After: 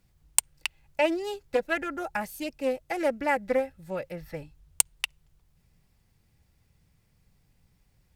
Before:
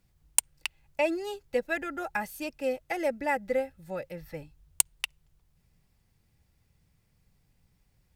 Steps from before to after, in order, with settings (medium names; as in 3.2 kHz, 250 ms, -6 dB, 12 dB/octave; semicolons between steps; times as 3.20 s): 1.94–3.01 s: peaking EQ 1.8 kHz -3.5 dB 1.9 oct; loudspeaker Doppler distortion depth 0.17 ms; trim +2.5 dB